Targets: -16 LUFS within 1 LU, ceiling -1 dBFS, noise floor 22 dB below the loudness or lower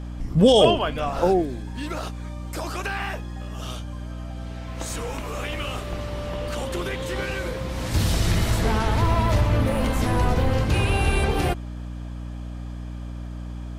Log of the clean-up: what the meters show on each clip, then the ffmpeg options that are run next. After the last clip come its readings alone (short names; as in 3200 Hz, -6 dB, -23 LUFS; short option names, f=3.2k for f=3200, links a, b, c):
hum 60 Hz; harmonics up to 300 Hz; hum level -31 dBFS; loudness -24.0 LUFS; peak -5.5 dBFS; loudness target -16.0 LUFS
-> -af "bandreject=f=60:t=h:w=4,bandreject=f=120:t=h:w=4,bandreject=f=180:t=h:w=4,bandreject=f=240:t=h:w=4,bandreject=f=300:t=h:w=4"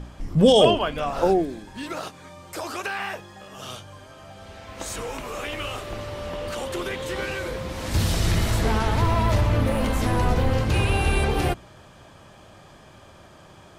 hum none; loudness -24.0 LUFS; peak -4.5 dBFS; loudness target -16.0 LUFS
-> -af "volume=8dB,alimiter=limit=-1dB:level=0:latency=1"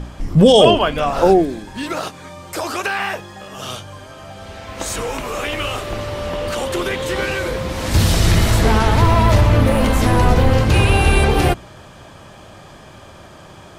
loudness -16.5 LUFS; peak -1.0 dBFS; noise floor -41 dBFS